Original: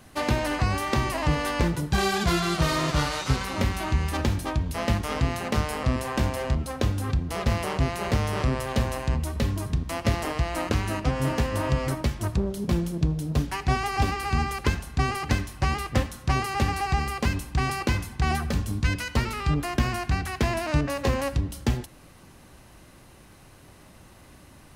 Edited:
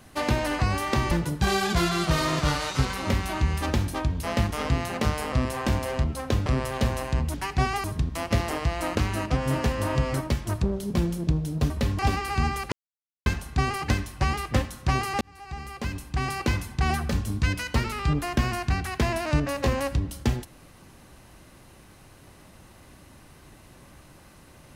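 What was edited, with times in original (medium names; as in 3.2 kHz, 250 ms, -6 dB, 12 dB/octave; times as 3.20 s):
1.11–1.62 s: delete
6.97–8.41 s: delete
9.29–9.58 s: swap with 13.44–13.94 s
14.67 s: insert silence 0.54 s
16.62–17.94 s: fade in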